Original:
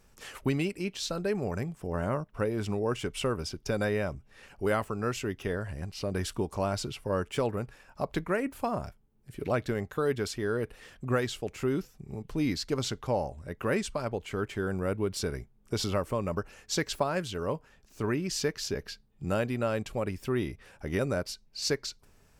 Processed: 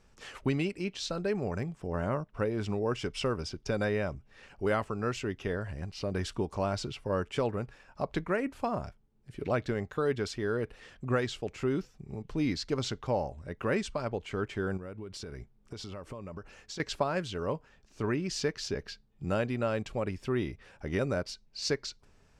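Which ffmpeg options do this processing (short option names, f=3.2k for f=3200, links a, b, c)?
-filter_complex "[0:a]asettb=1/sr,asplit=3[a][b][c];[a]atrim=end=2.974[d];[b]atrim=start=2.97:end=3.43,asetpts=PTS-STARTPTS,afade=t=in:d=0.004:c=qsin,afade=t=out:st=0.456:d=0.004:c=qsin,equalizer=f=5.2k:w=4.5:g=8[e];[c]atrim=start=3.426[f];[d][e]acrossfade=d=0.004:c1=hsin:c2=qsin[g];[g][f]acrossfade=d=0.004:c1=qsin:c2=hsin,asettb=1/sr,asplit=3[h][i][j];[h]atrim=end=14.774[k];[i]atrim=start=14.77:end=16.8,asetpts=PTS-STARTPTS,afade=t=in:d=0.004:c=qsin,afade=t=out:st=2.026:d=0.004:c=qsin,acompressor=threshold=-36dB:ratio=12:attack=3.2:release=140:knee=1:detection=peak[l];[j]atrim=start=16.796[m];[k][l]acrossfade=d=0.004:c1=hsin:c2=qsin[n];[n][m]acrossfade=d=0.004:c1=qsin:c2=hsin,lowpass=6.5k,volume=-1dB"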